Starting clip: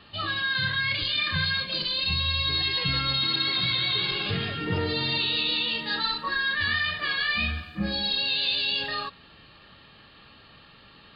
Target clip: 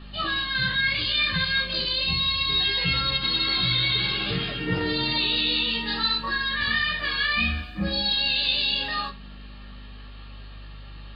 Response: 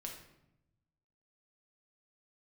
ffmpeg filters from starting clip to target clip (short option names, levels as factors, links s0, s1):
-filter_complex "[0:a]aeval=exprs='val(0)+0.00794*(sin(2*PI*50*n/s)+sin(2*PI*2*50*n/s)/2+sin(2*PI*3*50*n/s)/3+sin(2*PI*4*50*n/s)/4+sin(2*PI*5*50*n/s)/5)':c=same,flanger=delay=15.5:depth=2.1:speed=0.23,asplit=2[s0][s1];[1:a]atrim=start_sample=2205,atrim=end_sample=3528[s2];[s1][s2]afir=irnorm=-1:irlink=0,volume=0.891[s3];[s0][s3]amix=inputs=2:normalize=0,volume=1.19"